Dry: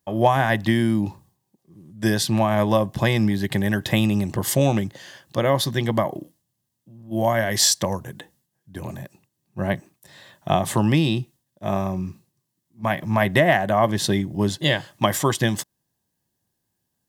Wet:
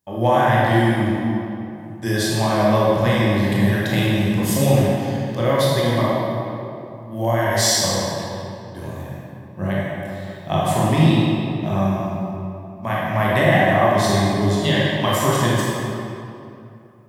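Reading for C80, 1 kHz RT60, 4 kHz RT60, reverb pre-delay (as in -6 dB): -1.5 dB, 2.7 s, 1.7 s, 20 ms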